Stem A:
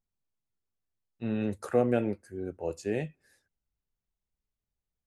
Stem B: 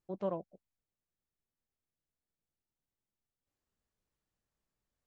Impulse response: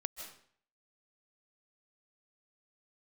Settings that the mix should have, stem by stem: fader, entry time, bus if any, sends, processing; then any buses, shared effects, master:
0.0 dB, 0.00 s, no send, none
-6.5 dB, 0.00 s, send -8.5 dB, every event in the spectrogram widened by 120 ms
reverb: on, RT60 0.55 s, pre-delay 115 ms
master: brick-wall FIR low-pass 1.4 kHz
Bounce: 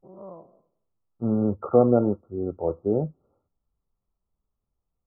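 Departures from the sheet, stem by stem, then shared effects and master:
stem A 0.0 dB -> +7.5 dB; stem B -6.5 dB -> -12.5 dB

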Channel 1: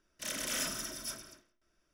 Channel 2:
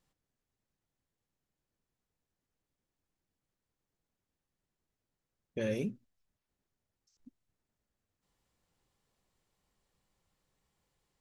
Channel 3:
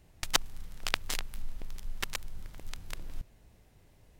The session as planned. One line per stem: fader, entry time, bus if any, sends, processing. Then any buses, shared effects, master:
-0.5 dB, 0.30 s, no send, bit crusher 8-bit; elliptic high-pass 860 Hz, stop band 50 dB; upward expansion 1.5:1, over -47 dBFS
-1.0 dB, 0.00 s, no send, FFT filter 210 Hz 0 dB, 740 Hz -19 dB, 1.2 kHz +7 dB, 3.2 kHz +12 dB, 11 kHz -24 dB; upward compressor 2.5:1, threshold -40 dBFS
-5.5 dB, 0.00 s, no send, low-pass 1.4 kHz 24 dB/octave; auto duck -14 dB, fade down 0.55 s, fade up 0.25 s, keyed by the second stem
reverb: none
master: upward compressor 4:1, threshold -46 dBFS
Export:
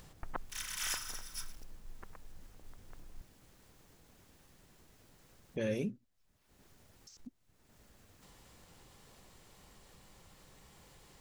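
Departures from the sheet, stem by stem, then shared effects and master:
stem 2: missing FFT filter 210 Hz 0 dB, 740 Hz -19 dB, 1.2 kHz +7 dB, 3.2 kHz +12 dB, 11 kHz -24 dB; stem 3 -5.5 dB -> +2.0 dB; master: missing upward compressor 4:1, threshold -46 dBFS

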